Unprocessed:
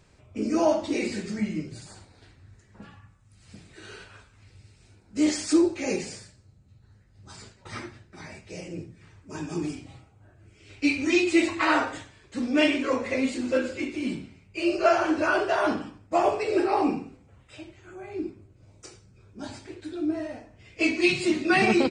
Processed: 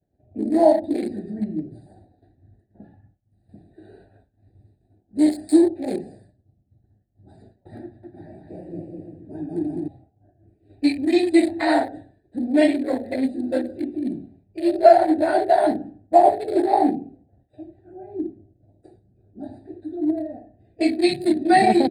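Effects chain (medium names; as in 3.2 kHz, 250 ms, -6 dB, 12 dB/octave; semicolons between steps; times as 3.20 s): local Wiener filter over 41 samples; high-pass 52 Hz 6 dB/octave; expander -52 dBFS; FFT filter 170 Hz 0 dB, 320 Hz +7 dB, 490 Hz -1 dB, 730 Hz +14 dB, 1.2 kHz -16 dB, 1.8 kHz +5 dB, 2.8 kHz -11 dB, 4.2 kHz +10 dB, 5.9 kHz -21 dB, 8.9 kHz +13 dB; 7.82–9.88 s: bouncing-ball echo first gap 210 ms, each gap 0.65×, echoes 5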